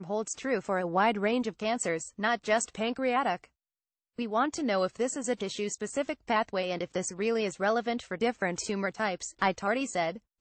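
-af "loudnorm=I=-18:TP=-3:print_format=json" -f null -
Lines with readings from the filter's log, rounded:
"input_i" : "-30.5",
"input_tp" : "-14.4",
"input_lra" : "1.4",
"input_thresh" : "-40.6",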